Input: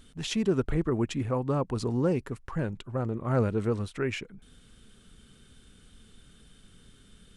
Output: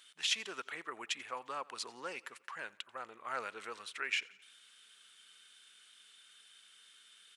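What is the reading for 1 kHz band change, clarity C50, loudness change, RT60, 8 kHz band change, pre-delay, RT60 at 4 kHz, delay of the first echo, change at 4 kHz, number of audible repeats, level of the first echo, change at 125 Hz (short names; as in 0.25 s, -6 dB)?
-5.0 dB, none, -10.0 dB, none, 0.0 dB, none, none, 88 ms, +2.5 dB, 3, -23.0 dB, -40.0 dB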